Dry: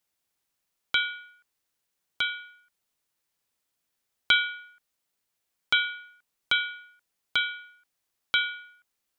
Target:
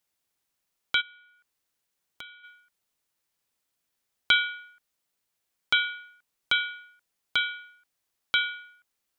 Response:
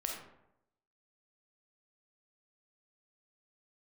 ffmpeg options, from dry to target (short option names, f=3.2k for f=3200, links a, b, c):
-filter_complex "[0:a]asplit=3[a][b][c];[a]afade=t=out:st=1:d=0.02[d];[b]acompressor=threshold=-48dB:ratio=3,afade=t=in:st=1:d=0.02,afade=t=out:st=2.43:d=0.02[e];[c]afade=t=in:st=2.43:d=0.02[f];[d][e][f]amix=inputs=3:normalize=0"